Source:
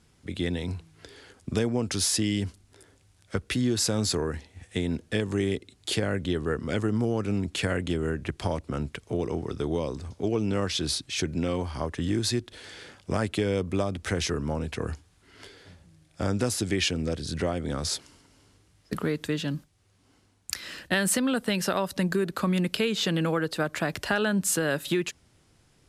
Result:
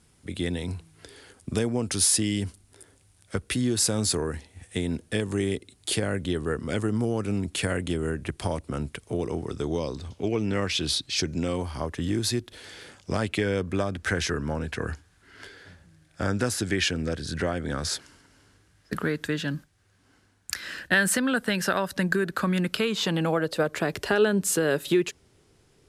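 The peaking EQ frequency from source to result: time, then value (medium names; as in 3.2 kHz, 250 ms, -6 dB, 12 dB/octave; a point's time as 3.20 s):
peaking EQ +9.5 dB 0.43 oct
9.45 s 9.5 kHz
10.49 s 1.7 kHz
11.81 s 13 kHz
12.80 s 13 kHz
13.46 s 1.6 kHz
22.59 s 1.6 kHz
23.81 s 410 Hz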